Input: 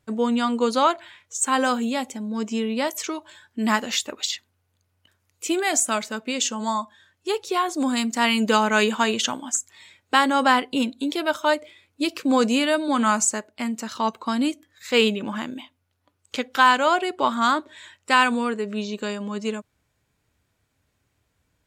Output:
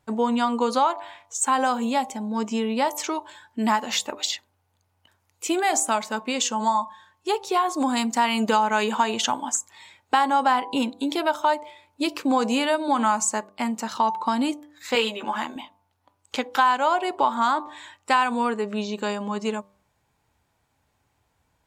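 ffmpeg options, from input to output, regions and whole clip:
-filter_complex "[0:a]asettb=1/sr,asplit=3[a][b][c];[a]atrim=end=14.954[d];[b]atrim=start=14.95:end=15.56,asetpts=PTS-STARTPTS,afade=t=in:d=0.004:c=qsin,afade=t=out:st=0.606:d=0.004:c=qsin,highpass=f=560:p=1,asplit=2[e][f];[f]adelay=13,volume=-4dB[g];[e][g]amix=inputs=2:normalize=0,atrim=end_sample=26901[h];[c]atrim=start=15.556[i];[d][h]acrossfade=d=0.004:c1=hsin:c2=qsin[j];[j][i]acrossfade=d=0.004:c1=qsin:c2=hsin,equalizer=f=860:w=2.3:g=11,bandreject=f=98.72:t=h:w=4,bandreject=f=197.44:t=h:w=4,bandreject=f=296.16:t=h:w=4,bandreject=f=394.88:t=h:w=4,bandreject=f=493.6:t=h:w=4,bandreject=f=592.32:t=h:w=4,bandreject=f=691.04:t=h:w=4,bandreject=f=789.76:t=h:w=4,bandreject=f=888.48:t=h:w=4,bandreject=f=987.2:t=h:w=4,bandreject=f=1.08592k:t=h:w=4,bandreject=f=1.18464k:t=h:w=4,acompressor=threshold=-19dB:ratio=3"

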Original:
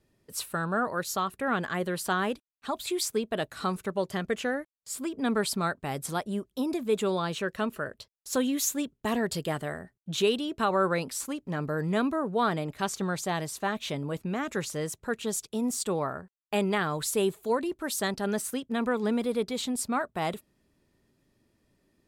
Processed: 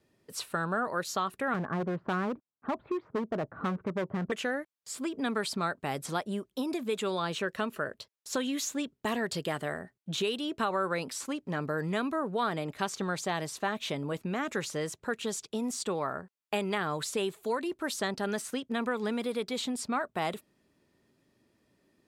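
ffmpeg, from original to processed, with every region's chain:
-filter_complex "[0:a]asettb=1/sr,asplit=3[a][b][c];[a]atrim=end=1.544[d];[b]atrim=start=1.54:end=4.32,asetpts=PTS-STARTPTS,afade=t=in:d=0.004:c=qsin,afade=t=out:st=2.776:d=0.004:c=qsin,lowpass=f=1.3k:w=0.5412,lowpass=f=1.3k:w=1.3066,equalizer=f=140:t=o:w=2.8:g=8.5,asoftclip=type=hard:threshold=-23.5dB[e];[c]atrim=start=4.316[f];[d][e]acrossfade=d=0.004:c1=hsin:c2=qsin[g];[g][f]acrossfade=d=0.004:c1=qsin:c2=hsin,highpass=f=170:p=1,highshelf=f=7.2k:g=-5.5,acrossover=split=1200|7700[h][i][j];[h]acompressor=threshold=-32dB:ratio=4[k];[i]acompressor=threshold=-35dB:ratio=4[l];[j]acompressor=threshold=-51dB:ratio=4[m];[k][l][m]amix=inputs=3:normalize=0,volume=2dB"

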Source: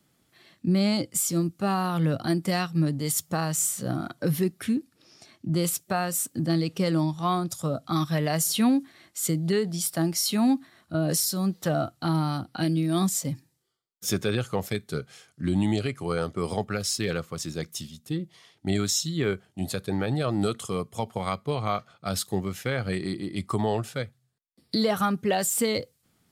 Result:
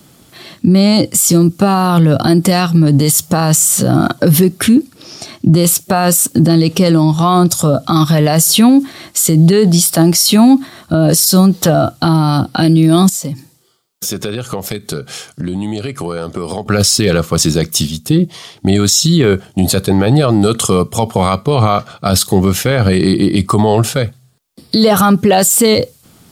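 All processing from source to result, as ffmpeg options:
-filter_complex "[0:a]asettb=1/sr,asplit=3[a][b][c];[a]atrim=end=13.094[d];[b]atrim=start=13.09:end=16.66,asetpts=PTS-STARTPTS,afade=t=in:d=0.004:c=qsin,afade=t=out:st=3.566:d=0.004:c=qsin,lowshelf=f=67:g=-11,acompressor=threshold=-41dB:ratio=5:attack=3.2:release=140:knee=1:detection=peak[e];[c]atrim=start=16.656[f];[d][e]acrossfade=d=0.004:c1=hsin:c2=qsin[g];[g][f]acrossfade=d=0.004:c1=qsin:c2=hsin,equalizer=f=1.9k:t=o:w=0.78:g=-5,alimiter=level_in=24dB:limit=-1dB:release=50:level=0:latency=1,volume=-1dB"

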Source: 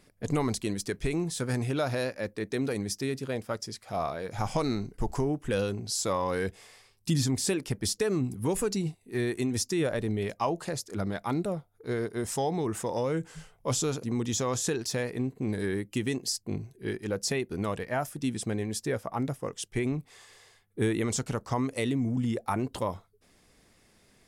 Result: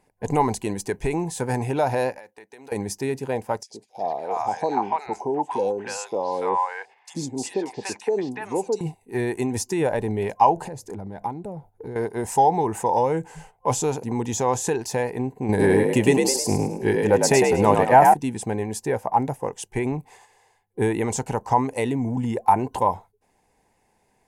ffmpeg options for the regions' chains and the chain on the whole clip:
-filter_complex "[0:a]asettb=1/sr,asplit=3[a][b][c];[a]atrim=end=2.184[d];[b]atrim=start=2.18:end=2.72,asetpts=PTS-STARTPTS,afade=t=in:d=0.004:c=qsin,afade=t=out:st=0.536:d=0.004:c=qsin,highpass=f=1.1k:p=1,acompressor=threshold=-45dB:ratio=12:attack=3.2:release=140:knee=1:detection=peak[e];[c]atrim=start=2.716[f];[d][e]acrossfade=d=0.004:c1=hsin:c2=qsin[g];[g][f]acrossfade=d=0.004:c1=qsin:c2=hsin,asettb=1/sr,asplit=3[h][i][j];[h]atrim=end=3.634[k];[i]atrim=start=3.63:end=8.81,asetpts=PTS-STARTPTS,afade=t=in:d=0.004:c=qsin,afade=t=out:st=5.176:d=0.004:c=qsin,highpass=290,lowpass=6.3k,acrossover=split=760|3500[l][m][n];[l]adelay=70[o];[m]adelay=360[p];[o][p][n]amix=inputs=3:normalize=0,atrim=end_sample=228438[q];[j]atrim=start=8.806[r];[k][q]acrossfade=d=0.004:c1=hsin:c2=qsin[s];[s][r]acrossfade=d=0.004:c1=qsin:c2=hsin,asettb=1/sr,asplit=3[t][u][v];[t]atrim=end=10.564[w];[u]atrim=start=10.56:end=11.96,asetpts=PTS-STARTPTS,afade=t=in:d=0.004:c=qsin,afade=t=out:st=1.396:d=0.004:c=qsin,lowshelf=f=460:g=11,acompressor=threshold=-36dB:ratio=6:attack=3.2:release=140:knee=1:detection=peak[x];[v]atrim=start=11.956[y];[w][x]acrossfade=d=0.004:c1=hsin:c2=qsin[z];[z][y]acrossfade=d=0.004:c1=qsin:c2=hsin,asettb=1/sr,asplit=3[aa][ab][ac];[aa]atrim=end=15.494[ad];[ab]atrim=start=15.49:end=18.14,asetpts=PTS-STARTPTS,afade=t=in:d=0.004:c=qsin,afade=t=out:st=2.646:d=0.004:c=qsin,asplit=6[ae][af][ag][ah][ai][aj];[af]adelay=104,afreqshift=58,volume=-4dB[ak];[ag]adelay=208,afreqshift=116,volume=-12.6dB[al];[ah]adelay=312,afreqshift=174,volume=-21.3dB[am];[ai]adelay=416,afreqshift=232,volume=-29.9dB[an];[aj]adelay=520,afreqshift=290,volume=-38.5dB[ao];[ae][ak][al][am][an][ao]amix=inputs=6:normalize=0,atrim=end_sample=116865,acontrast=61[ap];[ac]atrim=start=18.136[aq];[ad][ap]acrossfade=d=0.004:c1=hsin:c2=qsin[ar];[ar][aq]acrossfade=d=0.004:c1=qsin:c2=hsin,equalizer=f=830:w=1.9:g=9.5,agate=range=-9dB:threshold=-50dB:ratio=16:detection=peak,superequalizer=7b=1.41:9b=1.78:10b=0.501:13b=0.501:14b=0.562,volume=3dB"

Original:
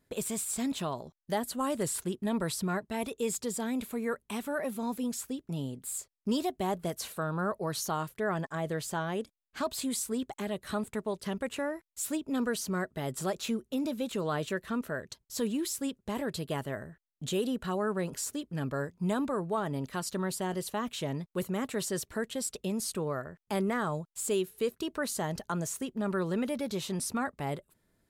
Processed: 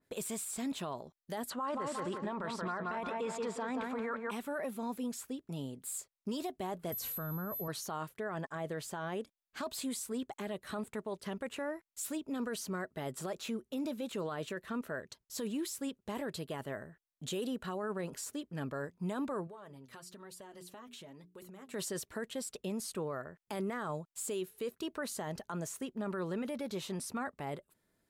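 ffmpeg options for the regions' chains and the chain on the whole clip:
-filter_complex "[0:a]asettb=1/sr,asplit=3[a][b][c];[a]atrim=end=1.504[d];[b]atrim=start=1.5:end=4.31,asetpts=PTS-STARTPTS,afade=t=in:d=0.004:c=qsin,afade=t=out:st=2.806:d=0.004:c=qsin,lowpass=5.4k,equalizer=f=1.1k:t=o:w=1.6:g=13,asplit=2[e][f];[f]adelay=178,lowpass=f=4.1k:p=1,volume=-6.5dB,asplit=2[g][h];[h]adelay=178,lowpass=f=4.1k:p=1,volume=0.41,asplit=2[i][j];[j]adelay=178,lowpass=f=4.1k:p=1,volume=0.41,asplit=2[k][l];[l]adelay=178,lowpass=f=4.1k:p=1,volume=0.41,asplit=2[m][n];[n]adelay=178,lowpass=f=4.1k:p=1,volume=0.41[o];[e][g][i][k][m][o]amix=inputs=6:normalize=0,atrim=end_sample=123921[p];[c]atrim=start=4.306[q];[d][p]acrossfade=d=0.004:c1=hsin:c2=qsin[r];[r][q]acrossfade=d=0.004:c1=qsin:c2=hsin,asettb=1/sr,asplit=3[s][t][u];[s]atrim=end=6.924[v];[t]atrim=start=6.92:end=7.68,asetpts=PTS-STARTPTS,afade=t=in:d=0.004:c=qsin,afade=t=out:st=0.756:d=0.004:c=qsin,bass=f=250:g=12,treble=f=4k:g=6,aeval=exprs='val(0)+0.0282*sin(2*PI*12000*n/s)':c=same,aeval=exprs='val(0)*gte(abs(val(0)),0.00473)':c=same[w];[u]atrim=start=7.676[x];[v][w]acrossfade=d=0.004:c1=hsin:c2=qsin[y];[y][x]acrossfade=d=0.004:c1=qsin:c2=hsin,asettb=1/sr,asplit=3[z][aa][ab];[z]atrim=end=19.474[ac];[aa]atrim=start=19.47:end=21.74,asetpts=PTS-STARTPTS,afade=t=in:d=0.004:c=qsin,afade=t=out:st=2.266:d=0.004:c=qsin,bandreject=f=60:t=h:w=6,bandreject=f=120:t=h:w=6,bandreject=f=180:t=h:w=6,bandreject=f=240:t=h:w=6,bandreject=f=300:t=h:w=6,bandreject=f=360:t=h:w=6,bandreject=f=420:t=h:w=6,flanger=delay=1.7:depth=6.3:regen=32:speed=1.1:shape=sinusoidal,acompressor=threshold=-43dB:ratio=12:attack=3.2:release=140:knee=1:detection=peak[ad];[ab]atrim=start=21.736[ae];[ac][ad]acrossfade=d=0.004:c1=hsin:c2=qsin[af];[af][ae]acrossfade=d=0.004:c1=qsin:c2=hsin,lowshelf=f=150:g=-8,alimiter=level_in=3dB:limit=-24dB:level=0:latency=1:release=11,volume=-3dB,adynamicequalizer=threshold=0.00178:dfrequency=3100:dqfactor=0.7:tfrequency=3100:tqfactor=0.7:attack=5:release=100:ratio=0.375:range=2:mode=cutabove:tftype=highshelf,volume=-2.5dB"

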